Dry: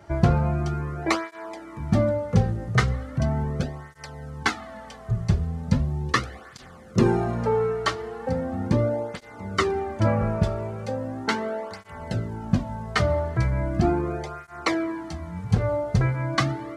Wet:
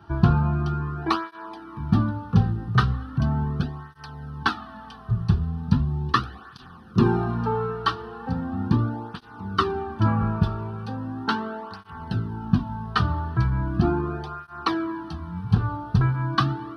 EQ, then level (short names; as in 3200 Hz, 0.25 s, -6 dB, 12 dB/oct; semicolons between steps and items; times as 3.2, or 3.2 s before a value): low shelf 82 Hz -7.5 dB; high shelf 4800 Hz -10 dB; fixed phaser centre 2100 Hz, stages 6; +4.5 dB